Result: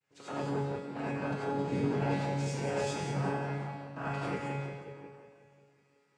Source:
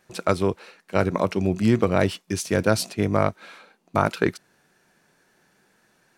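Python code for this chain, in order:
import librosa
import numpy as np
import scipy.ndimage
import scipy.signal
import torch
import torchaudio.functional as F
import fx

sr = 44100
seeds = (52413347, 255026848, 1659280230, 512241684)

y = fx.vibrato(x, sr, rate_hz=0.44, depth_cents=17.0)
y = fx.echo_filtered(y, sr, ms=180, feedback_pct=60, hz=4400.0, wet_db=-3)
y = fx.noise_vocoder(y, sr, seeds[0], bands=8)
y = fx.comb_fb(y, sr, f0_hz=140.0, decay_s=0.83, harmonics='all', damping=0.0, mix_pct=90)
y = fx.rev_gated(y, sr, seeds[1], gate_ms=120, shape='rising', drr_db=-6.0)
y = F.gain(torch.from_numpy(y), -6.5).numpy()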